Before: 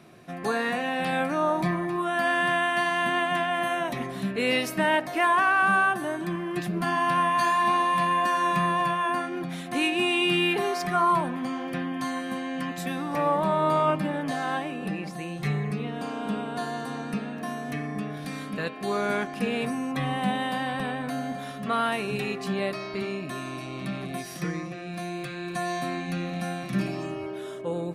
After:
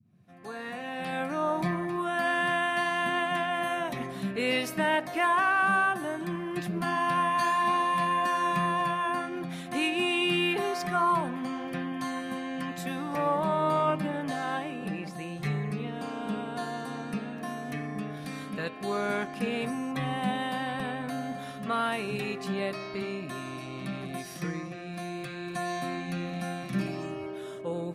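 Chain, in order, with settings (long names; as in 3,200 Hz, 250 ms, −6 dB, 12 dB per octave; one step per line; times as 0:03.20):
fade in at the beginning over 1.62 s
noise in a band 89–220 Hz −61 dBFS
level −3 dB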